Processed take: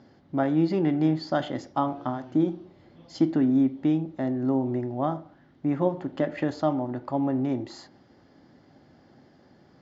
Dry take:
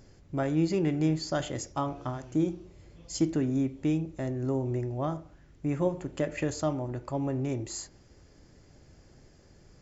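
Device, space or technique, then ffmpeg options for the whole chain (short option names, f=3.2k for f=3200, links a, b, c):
kitchen radio: -af "highpass=170,equalizer=f=250:t=q:w=4:g=6,equalizer=f=440:t=q:w=4:g=-5,equalizer=f=790:t=q:w=4:g=5,equalizer=f=2.5k:t=q:w=4:g=-9,lowpass=f=4.1k:w=0.5412,lowpass=f=4.1k:w=1.3066,volume=4dB"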